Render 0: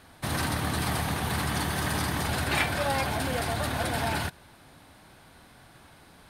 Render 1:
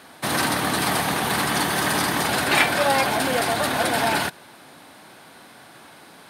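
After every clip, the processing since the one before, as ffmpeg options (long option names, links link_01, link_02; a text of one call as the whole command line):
ffmpeg -i in.wav -af "highpass=220,volume=8.5dB" out.wav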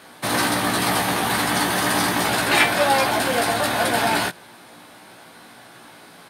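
ffmpeg -i in.wav -filter_complex "[0:a]asplit=2[link_01][link_02];[link_02]adelay=17,volume=-4dB[link_03];[link_01][link_03]amix=inputs=2:normalize=0" out.wav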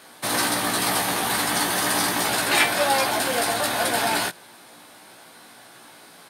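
ffmpeg -i in.wav -af "bass=frequency=250:gain=-4,treble=frequency=4000:gain=5,volume=-3dB" out.wav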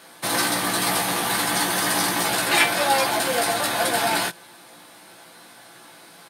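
ffmpeg -i in.wav -af "aecho=1:1:5.9:0.35" out.wav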